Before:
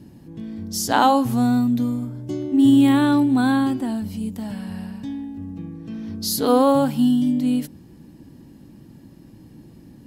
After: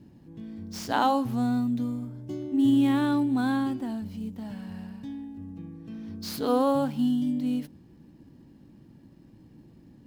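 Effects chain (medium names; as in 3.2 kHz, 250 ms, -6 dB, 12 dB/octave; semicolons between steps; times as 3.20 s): median filter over 5 samples; trim -7.5 dB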